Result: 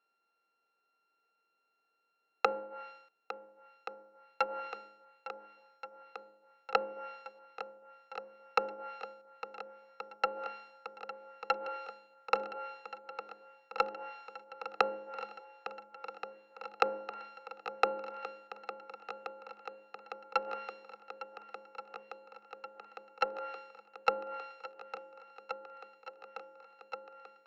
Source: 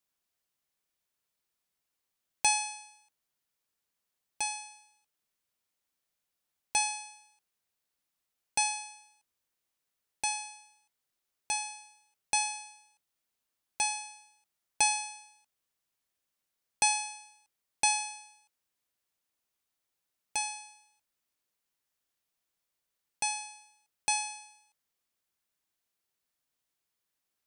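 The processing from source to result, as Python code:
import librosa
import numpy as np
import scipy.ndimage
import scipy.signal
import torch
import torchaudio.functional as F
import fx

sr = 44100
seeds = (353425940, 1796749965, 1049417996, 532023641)

y = np.r_[np.sort(x[:len(x) // 32 * 32].reshape(-1, 32), axis=1).ravel(), x[len(x) // 32 * 32:]]
y = fx.env_lowpass_down(y, sr, base_hz=370.0, full_db=-29.0)
y = fx.cabinet(y, sr, low_hz=220.0, low_slope=24, high_hz=4000.0, hz=(250.0, 460.0, 820.0, 3400.0), db=(-4, 9, 7, -8))
y = fx.echo_swing(y, sr, ms=1427, ratio=1.5, feedback_pct=77, wet_db=-14)
y = fx.cheby_harmonics(y, sr, harmonics=(8,), levels_db=(-45,), full_scale_db=-14.0)
y = y * 10.0 ** (6.0 / 20.0)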